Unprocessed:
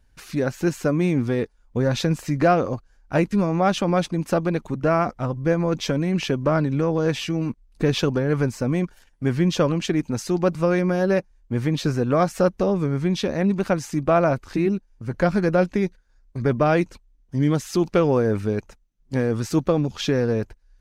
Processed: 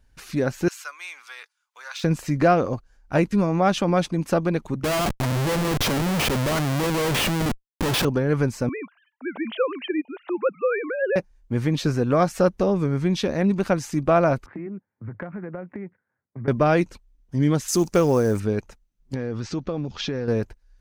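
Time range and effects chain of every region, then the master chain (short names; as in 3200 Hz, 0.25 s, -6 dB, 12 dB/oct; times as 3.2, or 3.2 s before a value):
0.68–2.04 HPF 1200 Hz 24 dB/oct + bell 1800 Hz -6.5 dB 0.21 oct + de-esser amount 75%
4.84–8.05 HPF 54 Hz + Schmitt trigger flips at -32.5 dBFS
8.69–11.16 sine-wave speech + HPF 490 Hz
14.46–16.48 Chebyshev band-pass 100–2100 Hz, order 4 + compressor 16:1, threshold -29 dBFS + three-band expander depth 40%
17.68–18.4 resonant high shelf 4900 Hz +10.5 dB, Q 1.5 + short-mantissa float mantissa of 4-bit
19.14–20.28 LPF 5800 Hz 24 dB/oct + compressor 3:1, threshold -25 dBFS
whole clip: dry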